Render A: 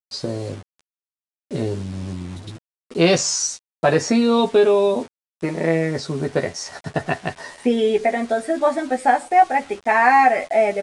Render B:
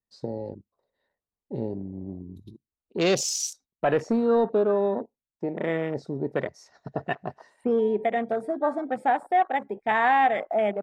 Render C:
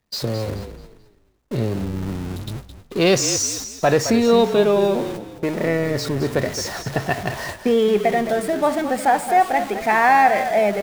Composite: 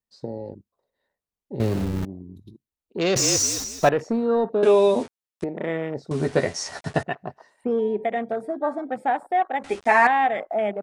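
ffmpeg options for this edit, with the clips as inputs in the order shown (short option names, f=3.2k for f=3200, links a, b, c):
-filter_complex "[2:a]asplit=2[a][b];[0:a]asplit=3[c][d][e];[1:a]asplit=6[f][g][h][i][j][k];[f]atrim=end=1.602[l];[a]atrim=start=1.598:end=2.052[m];[g]atrim=start=2.048:end=3.162[n];[b]atrim=start=3.158:end=3.892[o];[h]atrim=start=3.888:end=4.632[p];[c]atrim=start=4.628:end=5.442[q];[i]atrim=start=5.438:end=6.112[r];[d]atrim=start=6.108:end=7.032[s];[j]atrim=start=7.028:end=9.642[t];[e]atrim=start=9.638:end=10.072[u];[k]atrim=start=10.068[v];[l][m]acrossfade=d=0.004:c1=hsin:c2=hsin[w];[w][n]acrossfade=d=0.004:c1=hsin:c2=hsin[x];[x][o]acrossfade=d=0.004:c1=hsin:c2=hsin[y];[y][p]acrossfade=d=0.004:c1=hsin:c2=hsin[z];[z][q]acrossfade=d=0.004:c1=hsin:c2=hsin[aa];[aa][r]acrossfade=d=0.004:c1=hsin:c2=hsin[ab];[ab][s]acrossfade=d=0.004:c1=hsin:c2=hsin[ac];[ac][t]acrossfade=d=0.004:c1=hsin:c2=hsin[ad];[ad][u]acrossfade=d=0.004:c1=hsin:c2=hsin[ae];[ae][v]acrossfade=d=0.004:c1=hsin:c2=hsin"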